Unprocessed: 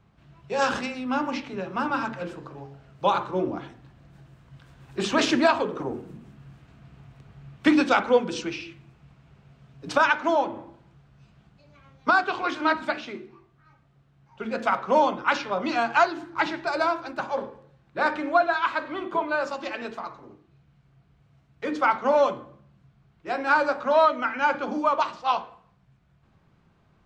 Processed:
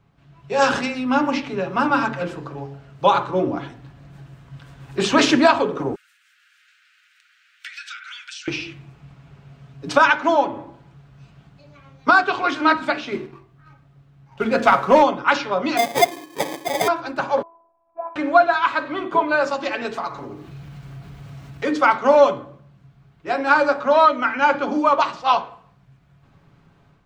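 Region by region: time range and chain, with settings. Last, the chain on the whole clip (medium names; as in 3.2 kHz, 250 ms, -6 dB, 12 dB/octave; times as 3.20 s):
5.95–8.48 s: steep high-pass 1.4 kHz 72 dB/octave + compression 16:1, threshold -39 dBFS
13.12–15.03 s: bass shelf 190 Hz +4.5 dB + waveshaping leveller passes 1
15.77–16.88 s: hum notches 50/100/150/200/250/300/350/400/450/500 Hz + sample-rate reducer 1.4 kHz + high-pass 300 Hz
17.42–18.16 s: companding laws mixed up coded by mu + cascade formant filter a + robot voice 335 Hz
19.85–22.15 s: treble shelf 5.5 kHz +6 dB + upward compressor, threshold -33 dBFS
whole clip: comb 7.1 ms, depth 33%; level rider gain up to 7 dB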